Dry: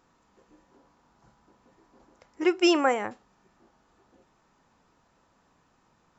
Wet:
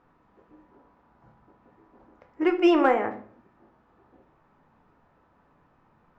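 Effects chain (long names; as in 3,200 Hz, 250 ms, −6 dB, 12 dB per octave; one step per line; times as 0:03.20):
low-pass filter 1,900 Hz 12 dB per octave
in parallel at −8.5 dB: asymmetric clip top −18.5 dBFS, bottom −15.5 dBFS
on the sum: rectangular room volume 68 cubic metres, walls mixed, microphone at 0.35 metres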